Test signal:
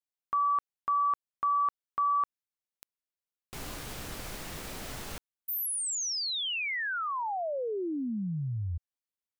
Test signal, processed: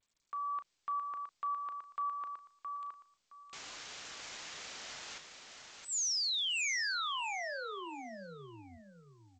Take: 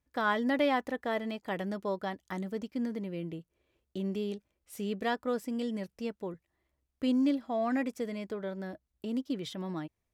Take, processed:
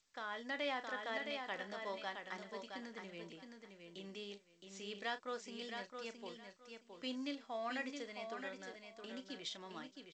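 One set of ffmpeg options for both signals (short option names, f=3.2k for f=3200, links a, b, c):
-filter_complex "[0:a]asplit=2[a][b];[b]adelay=35,volume=-12dB[c];[a][c]amix=inputs=2:normalize=0,acrossover=split=610[d][e];[e]alimiter=level_in=2dB:limit=-24dB:level=0:latency=1:release=123,volume=-2dB[f];[d][f]amix=inputs=2:normalize=0,lowpass=f=2k:p=1,lowshelf=f=62:g=6.5,aecho=1:1:667|1334|2001:0.501|0.1|0.02,dynaudnorm=f=210:g=5:m=4dB,aderivative,volume=6.5dB" -ar 16000 -c:a g722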